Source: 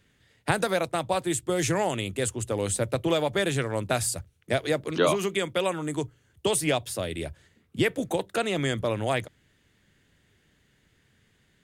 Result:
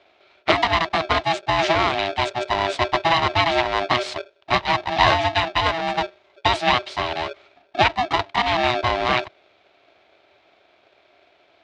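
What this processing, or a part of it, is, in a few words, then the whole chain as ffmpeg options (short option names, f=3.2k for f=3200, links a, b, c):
ring modulator pedal into a guitar cabinet: -af "aeval=exprs='val(0)*sgn(sin(2*PI*490*n/s))':c=same,highpass=81,equalizer=f=150:t=q:w=4:g=-10,equalizer=f=230:t=q:w=4:g=-9,equalizer=f=700:t=q:w=4:g=8,equalizer=f=2.3k:t=q:w=4:g=4,equalizer=f=3.7k:t=q:w=4:g=4,lowpass=f=4.5k:w=0.5412,lowpass=f=4.5k:w=1.3066,volume=5.5dB"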